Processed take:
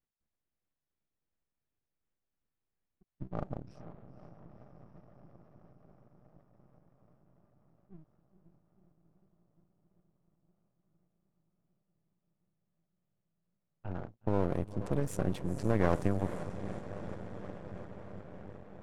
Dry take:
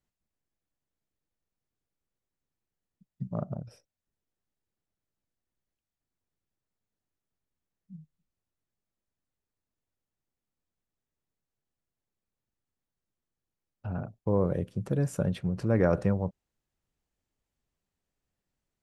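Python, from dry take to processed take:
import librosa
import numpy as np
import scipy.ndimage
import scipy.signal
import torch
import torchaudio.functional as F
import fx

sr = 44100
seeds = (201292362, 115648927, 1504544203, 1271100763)

y = fx.high_shelf(x, sr, hz=6700.0, db=8.0)
y = fx.echo_diffused(y, sr, ms=496, feedback_pct=77, wet_db=-11)
y = np.maximum(y, 0.0)
y = fx.tremolo_shape(y, sr, shape='saw_up', hz=2.8, depth_pct=30)
y = fx.env_lowpass(y, sr, base_hz=2500.0, full_db=-28.5)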